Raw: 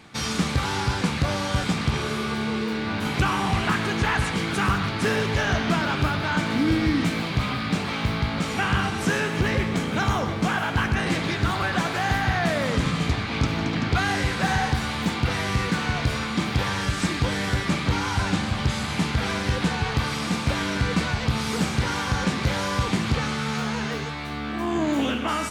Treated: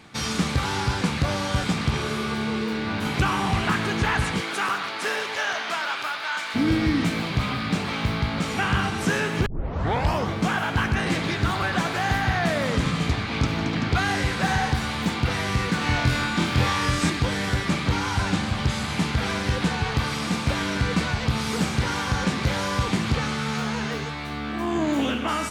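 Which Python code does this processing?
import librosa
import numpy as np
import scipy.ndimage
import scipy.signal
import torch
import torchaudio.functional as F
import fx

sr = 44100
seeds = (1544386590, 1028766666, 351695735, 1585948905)

y = fx.highpass(x, sr, hz=fx.line((4.4, 400.0), (6.54, 1100.0)), slope=12, at=(4.4, 6.54), fade=0.02)
y = fx.room_flutter(y, sr, wall_m=4.1, rt60_s=0.41, at=(15.79, 17.1))
y = fx.edit(y, sr, fx.tape_start(start_s=9.46, length_s=0.82), tone=tone)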